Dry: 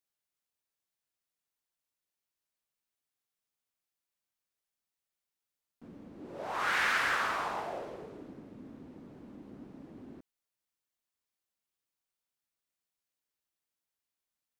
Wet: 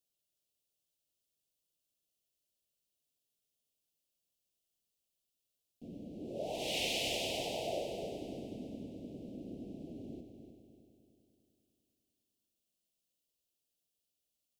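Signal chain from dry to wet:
elliptic band-stop filter 660–2,800 Hz, stop band 60 dB
on a send: echo machine with several playback heads 100 ms, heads first and third, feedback 61%, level −9.5 dB
on the sum: level +3 dB

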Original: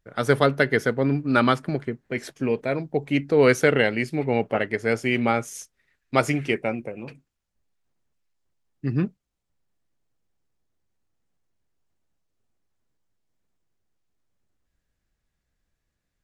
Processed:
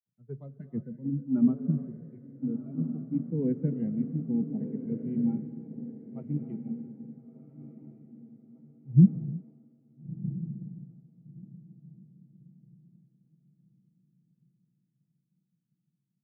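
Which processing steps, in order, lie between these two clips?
noise reduction from a noise print of the clip's start 15 dB
in parallel at −9 dB: bit reduction 5 bits
on the sum: flat-topped band-pass 160 Hz, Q 1.5
on a send: feedback delay with all-pass diffusion 1,373 ms, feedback 49%, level −6.5 dB
on the sum: reverb whose tail is shaped and stops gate 370 ms rising, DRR 11.5 dB
multiband upward and downward expander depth 70%

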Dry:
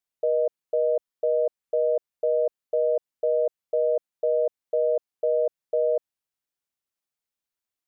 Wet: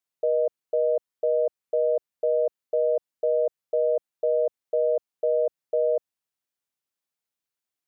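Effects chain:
high-pass filter 77 Hz

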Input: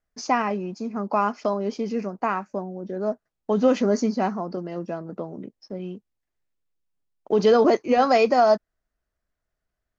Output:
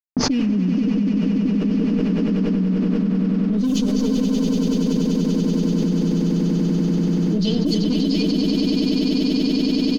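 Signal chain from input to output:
elliptic band-stop filter 270–3,300 Hz, stop band 50 dB
harmonic generator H 2 −42 dB, 4 −16 dB, 5 −38 dB, 6 −26 dB, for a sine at −15.5 dBFS
parametric band 1,500 Hz −6 dB 1.6 octaves
comb filter 6.6 ms, depth 77%
bit reduction 8 bits
low-pass that shuts in the quiet parts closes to 600 Hz, open at −19 dBFS
on a send: echo that builds up and dies away 96 ms, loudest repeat 8, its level −5.5 dB
on the sum: envelope flattener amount 100%

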